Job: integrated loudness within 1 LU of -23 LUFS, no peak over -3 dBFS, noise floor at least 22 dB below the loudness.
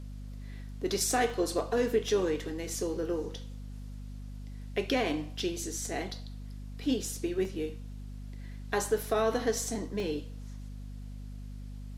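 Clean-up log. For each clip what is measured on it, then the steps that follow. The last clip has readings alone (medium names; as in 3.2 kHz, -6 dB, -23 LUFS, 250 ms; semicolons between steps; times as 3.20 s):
dropouts 3; longest dropout 1.1 ms; hum 50 Hz; highest harmonic 250 Hz; hum level -39 dBFS; loudness -32.0 LUFS; peak level -16.0 dBFS; loudness target -23.0 LUFS
-> interpolate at 1.30/7.45/10.00 s, 1.1 ms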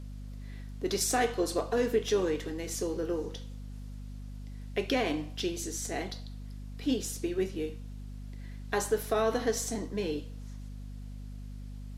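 dropouts 0; hum 50 Hz; highest harmonic 250 Hz; hum level -39 dBFS
-> hum notches 50/100/150/200/250 Hz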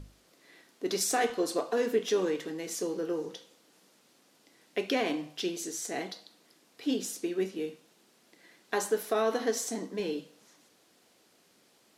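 hum not found; loudness -32.0 LUFS; peak level -16.0 dBFS; loudness target -23.0 LUFS
-> trim +9 dB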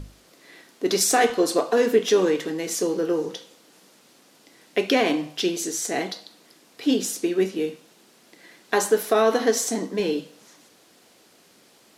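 loudness -23.0 LUFS; peak level -7.0 dBFS; noise floor -56 dBFS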